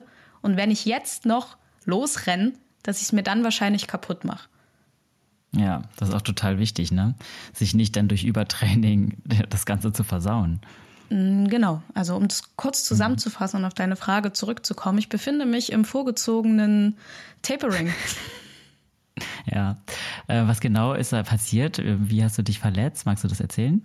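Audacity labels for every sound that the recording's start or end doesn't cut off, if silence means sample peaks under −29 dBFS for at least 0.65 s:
5.540000	18.310000	sound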